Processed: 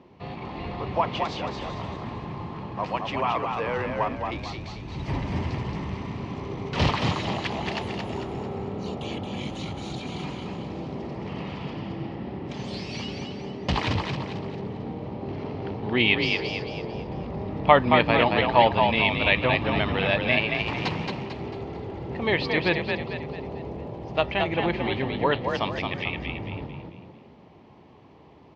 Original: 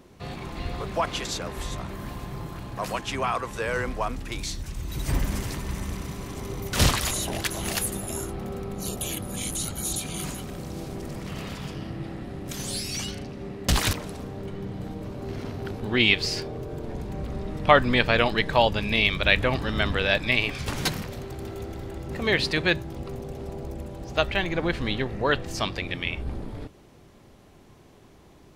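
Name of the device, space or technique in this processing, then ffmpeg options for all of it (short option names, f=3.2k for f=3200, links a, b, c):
frequency-shifting delay pedal into a guitar cabinet: -filter_complex "[0:a]asplit=6[a][b][c][d][e][f];[b]adelay=223,afreqshift=39,volume=-4.5dB[g];[c]adelay=446,afreqshift=78,volume=-12dB[h];[d]adelay=669,afreqshift=117,volume=-19.6dB[i];[e]adelay=892,afreqshift=156,volume=-27.1dB[j];[f]adelay=1115,afreqshift=195,volume=-34.6dB[k];[a][g][h][i][j][k]amix=inputs=6:normalize=0,highpass=85,equalizer=f=900:t=q:w=4:g=6,equalizer=f=1.5k:t=q:w=4:g=-8,equalizer=f=3.7k:t=q:w=4:g=-5,lowpass=f=4k:w=0.5412,lowpass=f=4k:w=1.3066"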